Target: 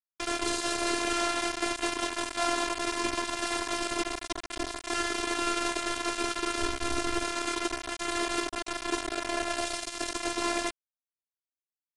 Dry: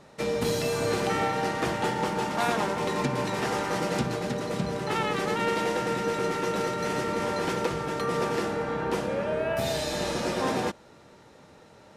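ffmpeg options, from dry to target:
-filter_complex "[0:a]aecho=1:1:79|158|237:0.251|0.0527|0.0111,acrusher=bits=3:mix=0:aa=0.000001,asettb=1/sr,asplit=3[s0][s1][s2];[s0]atrim=end=6.614[s3];[s1]atrim=start=6.61:end=7.24,asetpts=PTS-STARTPTS,afade=t=in:d=0.004:c=qsin,afade=t=out:st=0.626:d=0.004:c=qsin,lowshelf=f=220:g=11.5[s4];[s2]atrim=start=7.236[s5];[s3][s4]acrossfade=d=0.004:c1=hsin:c2=qsin[s6];[s6][s5]acrossfade=d=0.004:c1=qsin:c2=hsin,afftfilt=real='hypot(re,im)*cos(PI*b)':imag='0':win_size=512:overlap=0.75,aresample=22050,aresample=44100" -ar 48000 -c:a aac -b:a 160k

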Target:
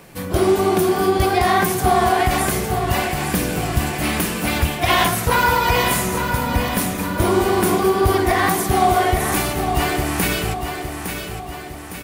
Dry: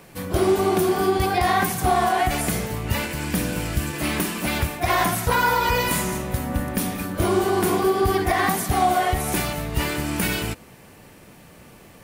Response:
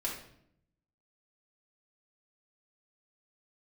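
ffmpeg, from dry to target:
-filter_complex "[0:a]asettb=1/sr,asplit=3[s0][s1][s2];[s0]atrim=end=4.654[s3];[s1]atrim=start=4.65:end=5.08,asetpts=PTS-STARTPTS,afade=t=in:d=0.004:c=qsin,afade=t=out:st=0.426:d=0.004:c=qsin,equalizer=f=3100:t=o:w=0.55:g=9.5[s4];[s2]atrim=start=5.076[s5];[s3][s4]acrossfade=d=0.004:c1=hsin:c2=qsin[s6];[s6][s5]acrossfade=d=0.004:c1=qsin:c2=hsin,asplit=2[s7][s8];[s8]aecho=0:1:859|1718|2577|3436|4295|5154:0.422|0.215|0.11|0.0559|0.0285|0.0145[s9];[s7][s9]amix=inputs=2:normalize=0,volume=1.41"

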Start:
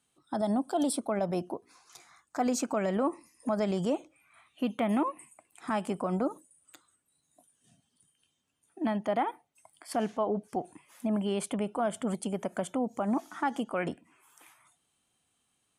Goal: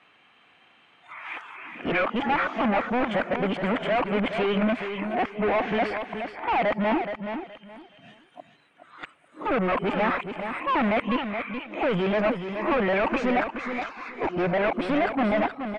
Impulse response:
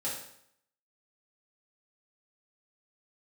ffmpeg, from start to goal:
-filter_complex "[0:a]areverse,asplit=2[s0][s1];[s1]highpass=f=720:p=1,volume=31.6,asoftclip=type=tanh:threshold=0.133[s2];[s0][s2]amix=inputs=2:normalize=0,lowpass=f=1800:p=1,volume=0.501,lowpass=f=2400:t=q:w=2.2,aecho=1:1:423|846|1269:0.398|0.0876|0.0193"

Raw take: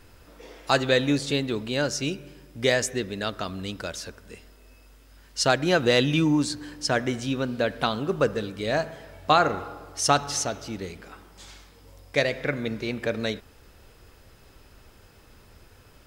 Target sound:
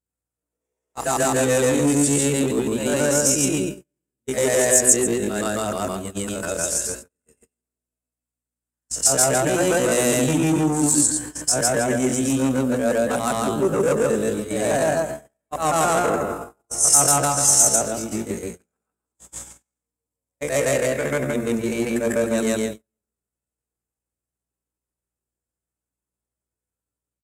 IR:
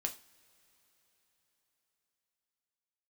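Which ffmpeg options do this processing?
-filter_complex "[0:a]afftfilt=real='re':imag='-im':win_size=8192:overlap=0.75,asplit=2[s0][s1];[s1]alimiter=limit=0.0841:level=0:latency=1:release=88,volume=0.891[s2];[s0][s2]amix=inputs=2:normalize=0,asoftclip=type=hard:threshold=0.075,bandreject=f=60:t=h:w=6,bandreject=f=120:t=h:w=6,bandreject=f=180:t=h:w=6,bandreject=f=240:t=h:w=6,bandreject=f=300:t=h:w=6,bandreject=f=360:t=h:w=6,bandreject=f=420:t=h:w=6,bandreject=f=480:t=h:w=6,bandreject=f=540:t=h:w=6,bandreject=f=600:t=h:w=6,asplit=2[s3][s4];[s4]adelay=186,lowpass=f=1700:p=1,volume=0.119,asplit=2[s5][s6];[s6]adelay=186,lowpass=f=1700:p=1,volume=0.29[s7];[s3][s5][s7]amix=inputs=3:normalize=0,atempo=0.59,aresample=32000,aresample=44100,highpass=f=370:p=1,aeval=exprs='val(0)+0.00112*(sin(2*PI*60*n/s)+sin(2*PI*2*60*n/s)/2+sin(2*PI*3*60*n/s)/3+sin(2*PI*4*60*n/s)/4+sin(2*PI*5*60*n/s)/5)':c=same,highshelf=f=5900:t=q:w=3:g=11.5,agate=range=0.00562:threshold=0.0141:ratio=16:detection=peak,tiltshelf=f=730:g=5,volume=2.66"

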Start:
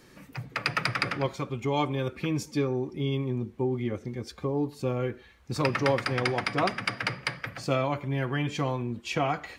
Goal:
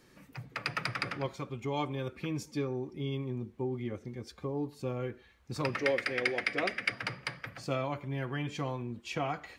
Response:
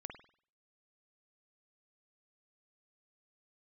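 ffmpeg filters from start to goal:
-filter_complex "[0:a]asettb=1/sr,asplit=3[s0][s1][s2];[s0]atrim=end=5.774[s3];[s1]atrim=start=5.77:end=6.92,asetpts=PTS-STARTPTS,afade=t=in:d=0.004:c=qsin,afade=t=out:st=1.146:d=0.004:c=qsin,equalizer=f=125:t=o:w=1:g=-12,equalizer=f=500:t=o:w=1:g=6,equalizer=f=1000:t=o:w=1:g=-11,equalizer=f=2000:t=o:w=1:g=10[s4];[s2]atrim=start=6.916[s5];[s3][s4]acrossfade=d=0.004:c1=hsin:c2=qsin[s6];[s6][s5]acrossfade=d=0.004:c1=qsin:c2=hsin,volume=0.473"

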